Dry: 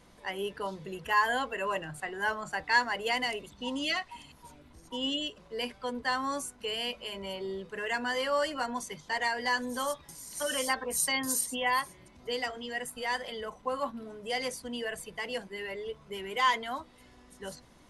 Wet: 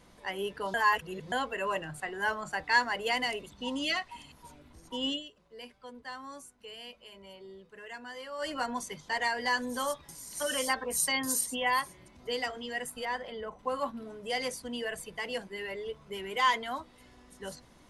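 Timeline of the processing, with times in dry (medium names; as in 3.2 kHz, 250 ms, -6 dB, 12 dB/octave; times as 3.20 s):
0.74–1.32 s: reverse
5.11–8.50 s: dip -12 dB, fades 0.12 s
13.05–13.59 s: low-pass 1.6 kHz 6 dB/octave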